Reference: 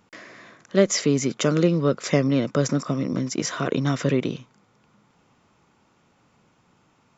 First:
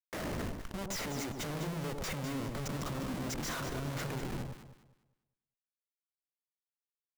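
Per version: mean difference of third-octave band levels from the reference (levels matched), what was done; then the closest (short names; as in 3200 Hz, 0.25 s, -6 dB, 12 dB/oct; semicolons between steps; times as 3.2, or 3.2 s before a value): 15.0 dB: compressor 10:1, threshold -28 dBFS, peak gain reduction 17 dB; Schmitt trigger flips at -41.5 dBFS; echo with dull and thin repeats by turns 0.101 s, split 1000 Hz, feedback 52%, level -3 dB; gain -3 dB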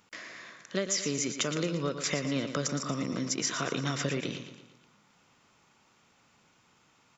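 6.5 dB: tilt shelf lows -5.5 dB, about 1200 Hz; compressor 5:1, threshold -25 dBFS, peak gain reduction 10 dB; feedback echo 0.116 s, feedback 48%, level -9.5 dB; gain -2.5 dB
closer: second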